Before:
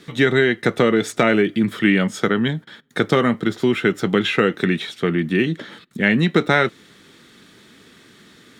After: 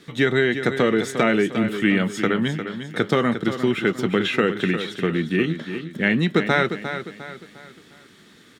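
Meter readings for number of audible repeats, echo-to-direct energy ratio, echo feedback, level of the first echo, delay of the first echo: 4, -8.5 dB, 40%, -9.5 dB, 353 ms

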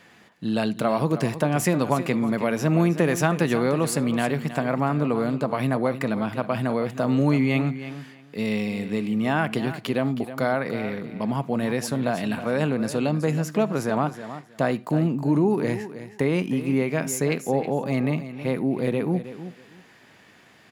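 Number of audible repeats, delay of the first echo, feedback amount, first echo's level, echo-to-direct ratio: 2, 318 ms, 18%, -12.5 dB, -12.5 dB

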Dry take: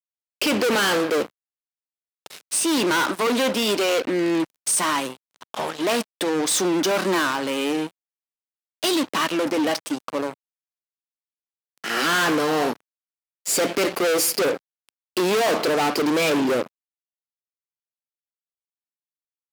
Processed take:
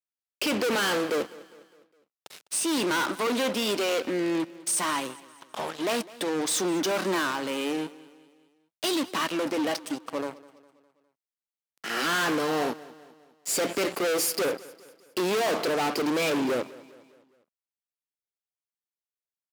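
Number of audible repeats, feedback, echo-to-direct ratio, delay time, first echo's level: 3, 49%, -19.0 dB, 204 ms, -20.0 dB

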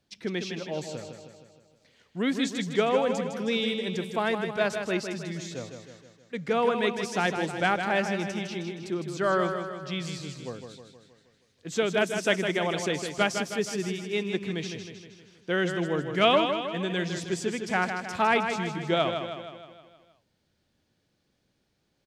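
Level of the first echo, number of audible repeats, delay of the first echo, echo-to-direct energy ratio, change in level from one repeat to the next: -7.0 dB, 6, 157 ms, -5.5 dB, -5.0 dB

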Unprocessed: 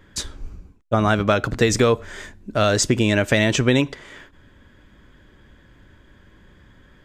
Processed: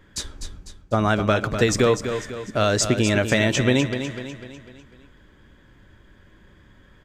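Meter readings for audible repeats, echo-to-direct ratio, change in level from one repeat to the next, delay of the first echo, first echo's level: 5, -8.0 dB, -6.5 dB, 249 ms, -9.0 dB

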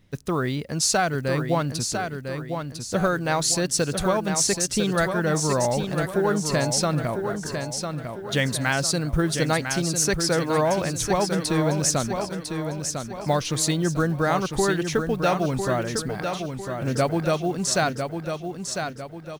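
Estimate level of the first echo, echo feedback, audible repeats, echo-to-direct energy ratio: -6.5 dB, 42%, 4, -5.5 dB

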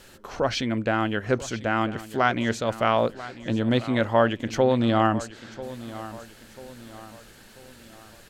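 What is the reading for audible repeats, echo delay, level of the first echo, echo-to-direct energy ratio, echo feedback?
3, 991 ms, -16.0 dB, -15.0 dB, 43%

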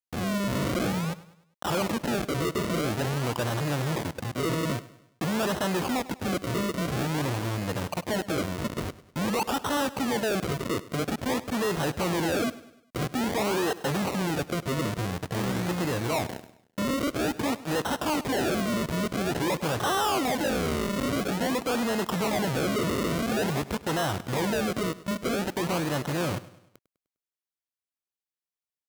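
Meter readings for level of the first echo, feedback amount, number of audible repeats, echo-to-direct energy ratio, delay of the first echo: -18.0 dB, 46%, 3, -17.0 dB, 101 ms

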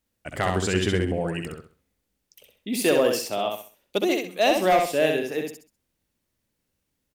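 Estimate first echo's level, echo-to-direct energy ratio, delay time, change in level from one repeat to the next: -4.0 dB, -3.5 dB, 65 ms, -10.5 dB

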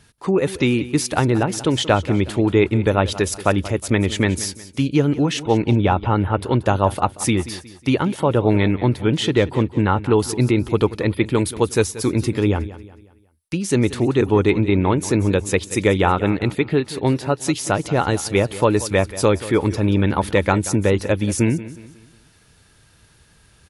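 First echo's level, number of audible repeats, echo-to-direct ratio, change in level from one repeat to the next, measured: -16.0 dB, 3, -15.5 dB, -8.0 dB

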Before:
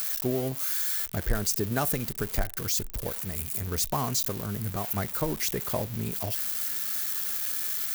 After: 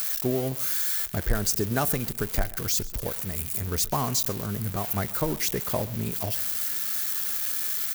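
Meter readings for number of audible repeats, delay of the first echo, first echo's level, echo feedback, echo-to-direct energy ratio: 2, 131 ms, -20.0 dB, 37%, -19.5 dB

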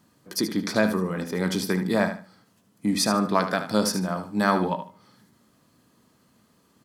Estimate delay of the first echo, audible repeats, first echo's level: 75 ms, 2, -10.0 dB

